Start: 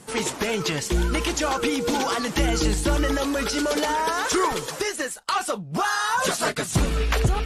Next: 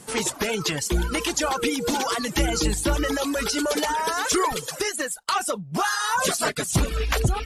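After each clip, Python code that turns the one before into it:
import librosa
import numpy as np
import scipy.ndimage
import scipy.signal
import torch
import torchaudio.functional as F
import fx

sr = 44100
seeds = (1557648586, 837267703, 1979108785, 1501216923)

y = fx.dereverb_blind(x, sr, rt60_s=0.71)
y = fx.high_shelf(y, sr, hz=5900.0, db=5.5)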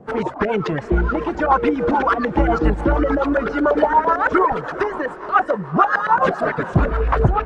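y = fx.filter_lfo_lowpass(x, sr, shape='saw_up', hz=8.9, low_hz=650.0, high_hz=1700.0, q=2.6)
y = fx.echo_diffused(y, sr, ms=451, feedback_pct=53, wet_db=-14.0)
y = fx.rotary(y, sr, hz=7.0)
y = F.gain(torch.from_numpy(y), 7.0).numpy()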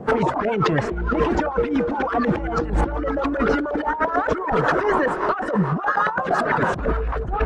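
y = fx.over_compress(x, sr, threshold_db=-25.0, ratio=-1.0)
y = F.gain(torch.from_numpy(y), 3.0).numpy()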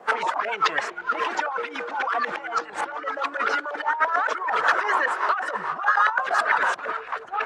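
y = scipy.signal.sosfilt(scipy.signal.butter(2, 1100.0, 'highpass', fs=sr, output='sos'), x)
y = F.gain(torch.from_numpy(y), 3.5).numpy()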